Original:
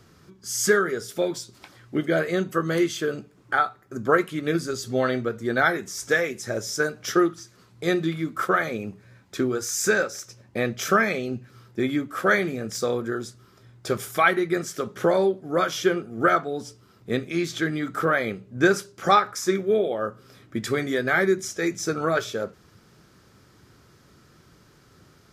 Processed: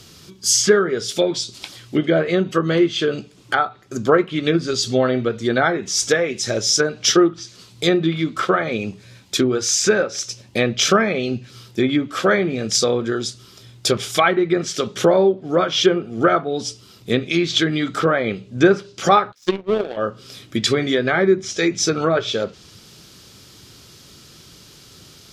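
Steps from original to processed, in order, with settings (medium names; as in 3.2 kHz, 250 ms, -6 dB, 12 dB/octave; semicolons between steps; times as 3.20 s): low-pass that closes with the level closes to 1.4 kHz, closed at -19 dBFS; 19.32–19.97 s: power-law waveshaper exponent 2; resonant high shelf 2.3 kHz +9.5 dB, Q 1.5; trim +6.5 dB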